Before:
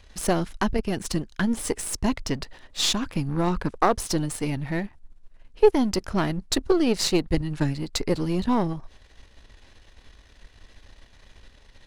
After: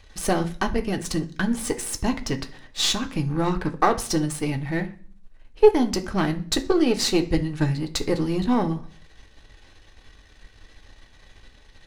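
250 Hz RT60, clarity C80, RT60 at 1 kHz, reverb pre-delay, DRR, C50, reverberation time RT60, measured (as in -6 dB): 0.65 s, 20.5 dB, 0.40 s, 3 ms, 3.5 dB, 15.5 dB, 0.45 s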